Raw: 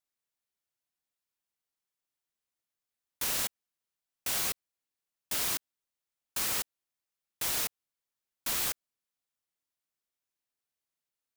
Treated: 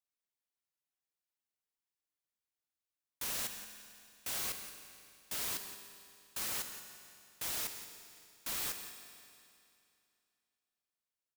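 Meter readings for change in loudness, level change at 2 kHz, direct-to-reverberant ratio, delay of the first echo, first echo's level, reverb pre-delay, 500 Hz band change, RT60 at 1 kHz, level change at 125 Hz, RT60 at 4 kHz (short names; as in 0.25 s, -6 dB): -7.0 dB, -6.0 dB, 6.0 dB, 0.174 s, -12.0 dB, 10 ms, -6.0 dB, 2.6 s, -6.5 dB, 2.5 s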